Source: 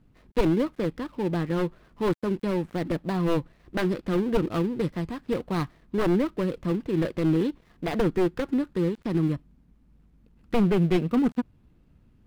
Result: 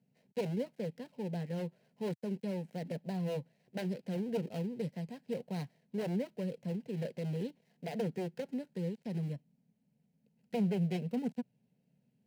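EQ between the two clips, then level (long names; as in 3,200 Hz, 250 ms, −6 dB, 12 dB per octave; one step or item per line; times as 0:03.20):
high-pass filter 110 Hz 24 dB per octave
phaser with its sweep stopped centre 320 Hz, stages 6
notch filter 3,500 Hz, Q 9.8
−8.5 dB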